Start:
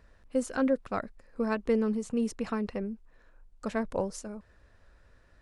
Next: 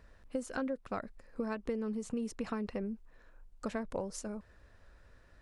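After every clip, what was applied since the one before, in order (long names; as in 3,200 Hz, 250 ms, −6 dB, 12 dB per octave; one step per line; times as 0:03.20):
downward compressor 6 to 1, threshold −33 dBFS, peak gain reduction 11.5 dB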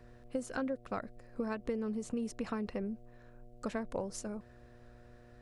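hum with harmonics 120 Hz, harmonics 6, −59 dBFS −3 dB per octave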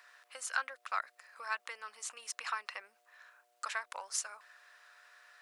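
high-pass filter 1,100 Hz 24 dB per octave
level +9.5 dB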